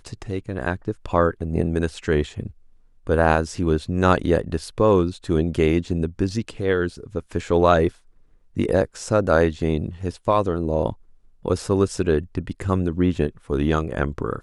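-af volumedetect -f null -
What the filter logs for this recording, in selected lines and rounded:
mean_volume: -22.1 dB
max_volume: -1.4 dB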